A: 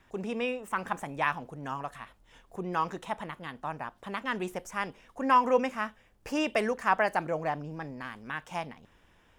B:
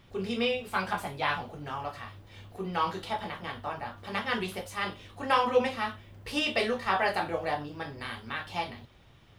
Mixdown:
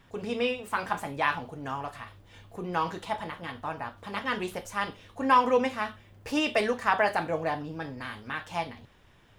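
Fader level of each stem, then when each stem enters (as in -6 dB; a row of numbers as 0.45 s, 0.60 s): +0.5 dB, -4.5 dB; 0.00 s, 0.00 s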